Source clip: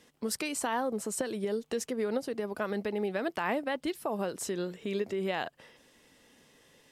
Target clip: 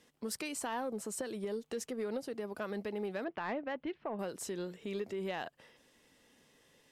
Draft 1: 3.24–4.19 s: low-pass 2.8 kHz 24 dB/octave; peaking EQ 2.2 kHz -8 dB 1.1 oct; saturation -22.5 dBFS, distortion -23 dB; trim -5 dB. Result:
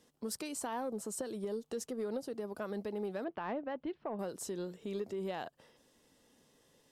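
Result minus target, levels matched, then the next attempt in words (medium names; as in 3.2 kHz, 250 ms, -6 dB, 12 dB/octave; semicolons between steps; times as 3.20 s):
2 kHz band -5.0 dB
3.24–4.19 s: low-pass 2.8 kHz 24 dB/octave; saturation -22.5 dBFS, distortion -21 dB; trim -5 dB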